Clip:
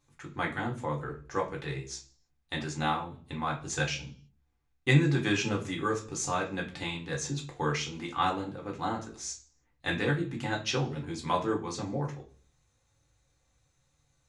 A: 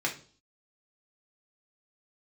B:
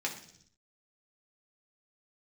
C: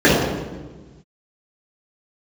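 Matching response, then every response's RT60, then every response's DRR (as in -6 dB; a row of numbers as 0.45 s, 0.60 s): A; 0.45 s, 0.65 s, 1.3 s; -1.5 dB, -1.5 dB, -10.5 dB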